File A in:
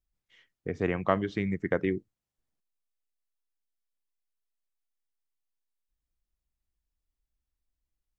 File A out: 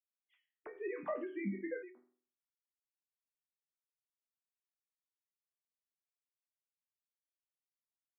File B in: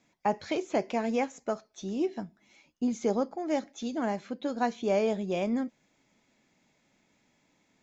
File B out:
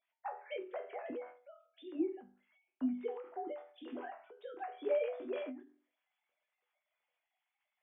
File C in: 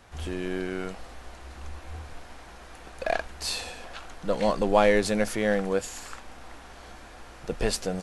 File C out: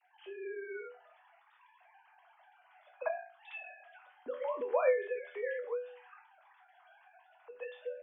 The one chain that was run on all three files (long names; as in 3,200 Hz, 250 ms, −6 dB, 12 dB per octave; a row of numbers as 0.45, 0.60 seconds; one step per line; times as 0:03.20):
three sine waves on the formant tracks
resonators tuned to a chord E2 minor, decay 0.32 s
every ending faded ahead of time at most 120 dB per second
level +4 dB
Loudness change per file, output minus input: −11.0, −10.0, −10.0 LU